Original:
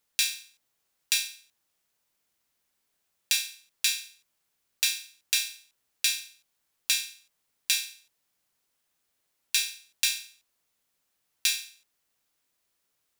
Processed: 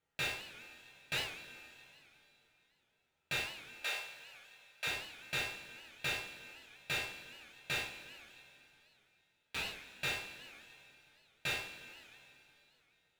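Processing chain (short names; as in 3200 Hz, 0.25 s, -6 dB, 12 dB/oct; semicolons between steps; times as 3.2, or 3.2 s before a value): median filter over 9 samples; 3.4–4.87 HPF 480 Hz 24 dB/oct; 7.82–9.66 ring modulator 66 Hz; limiter -23 dBFS, peak gain reduction 5.5 dB; high shelf 7200 Hz -9.5 dB; notch 1100 Hz, Q 5.6; reverb, pre-delay 3 ms, DRR -3.5 dB; record warp 78 rpm, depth 160 cents; gain -3.5 dB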